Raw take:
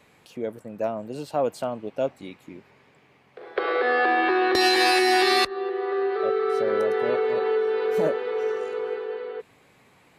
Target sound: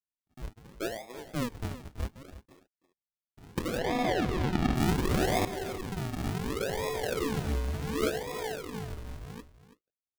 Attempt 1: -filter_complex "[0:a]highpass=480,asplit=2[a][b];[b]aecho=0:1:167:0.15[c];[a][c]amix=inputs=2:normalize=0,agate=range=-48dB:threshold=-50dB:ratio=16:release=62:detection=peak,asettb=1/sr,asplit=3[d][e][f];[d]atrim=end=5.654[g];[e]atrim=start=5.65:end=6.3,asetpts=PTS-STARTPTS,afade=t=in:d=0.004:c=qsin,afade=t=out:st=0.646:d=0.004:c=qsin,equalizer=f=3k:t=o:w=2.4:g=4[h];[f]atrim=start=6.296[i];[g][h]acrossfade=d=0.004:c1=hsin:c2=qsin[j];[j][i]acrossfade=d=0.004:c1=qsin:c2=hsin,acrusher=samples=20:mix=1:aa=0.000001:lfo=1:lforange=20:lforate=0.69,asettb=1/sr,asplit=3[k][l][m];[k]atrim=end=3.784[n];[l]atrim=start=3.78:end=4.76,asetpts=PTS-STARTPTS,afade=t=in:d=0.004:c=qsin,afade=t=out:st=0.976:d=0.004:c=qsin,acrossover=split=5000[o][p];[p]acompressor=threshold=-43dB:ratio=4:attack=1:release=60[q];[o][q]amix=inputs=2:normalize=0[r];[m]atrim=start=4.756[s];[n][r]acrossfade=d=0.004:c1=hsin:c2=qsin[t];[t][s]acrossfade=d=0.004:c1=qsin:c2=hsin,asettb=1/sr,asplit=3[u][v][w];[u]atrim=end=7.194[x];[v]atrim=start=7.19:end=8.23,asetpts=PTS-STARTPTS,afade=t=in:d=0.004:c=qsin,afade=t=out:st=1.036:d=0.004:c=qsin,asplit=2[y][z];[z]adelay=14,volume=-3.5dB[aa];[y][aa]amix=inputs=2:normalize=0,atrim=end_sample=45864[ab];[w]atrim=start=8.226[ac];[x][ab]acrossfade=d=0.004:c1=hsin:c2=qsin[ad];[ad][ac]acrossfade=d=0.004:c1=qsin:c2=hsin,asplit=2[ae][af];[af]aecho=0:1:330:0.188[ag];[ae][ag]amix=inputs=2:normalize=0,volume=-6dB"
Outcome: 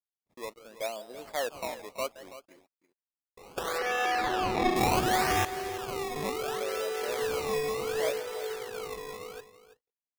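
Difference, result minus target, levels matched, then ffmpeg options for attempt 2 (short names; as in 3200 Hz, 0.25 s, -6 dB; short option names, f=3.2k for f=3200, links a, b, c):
decimation with a swept rate: distortion -33 dB
-filter_complex "[0:a]highpass=480,asplit=2[a][b];[b]aecho=0:1:167:0.15[c];[a][c]amix=inputs=2:normalize=0,agate=range=-48dB:threshold=-50dB:ratio=16:release=62:detection=peak,asettb=1/sr,asplit=3[d][e][f];[d]atrim=end=5.654[g];[e]atrim=start=5.65:end=6.3,asetpts=PTS-STARTPTS,afade=t=in:d=0.004:c=qsin,afade=t=out:st=0.646:d=0.004:c=qsin,equalizer=f=3k:t=o:w=2.4:g=4[h];[f]atrim=start=6.296[i];[g][h]acrossfade=d=0.004:c1=hsin:c2=qsin[j];[j][i]acrossfade=d=0.004:c1=qsin:c2=hsin,acrusher=samples=59:mix=1:aa=0.000001:lfo=1:lforange=59:lforate=0.69,asettb=1/sr,asplit=3[k][l][m];[k]atrim=end=3.784[n];[l]atrim=start=3.78:end=4.76,asetpts=PTS-STARTPTS,afade=t=in:d=0.004:c=qsin,afade=t=out:st=0.976:d=0.004:c=qsin,acrossover=split=5000[o][p];[p]acompressor=threshold=-43dB:ratio=4:attack=1:release=60[q];[o][q]amix=inputs=2:normalize=0[r];[m]atrim=start=4.756[s];[n][r]acrossfade=d=0.004:c1=hsin:c2=qsin[t];[t][s]acrossfade=d=0.004:c1=qsin:c2=hsin,asettb=1/sr,asplit=3[u][v][w];[u]atrim=end=7.194[x];[v]atrim=start=7.19:end=8.23,asetpts=PTS-STARTPTS,afade=t=in:d=0.004:c=qsin,afade=t=out:st=1.036:d=0.004:c=qsin,asplit=2[y][z];[z]adelay=14,volume=-3.5dB[aa];[y][aa]amix=inputs=2:normalize=0,atrim=end_sample=45864[ab];[w]atrim=start=8.226[ac];[x][ab]acrossfade=d=0.004:c1=hsin:c2=qsin[ad];[ad][ac]acrossfade=d=0.004:c1=qsin:c2=hsin,asplit=2[ae][af];[af]aecho=0:1:330:0.188[ag];[ae][ag]amix=inputs=2:normalize=0,volume=-6dB"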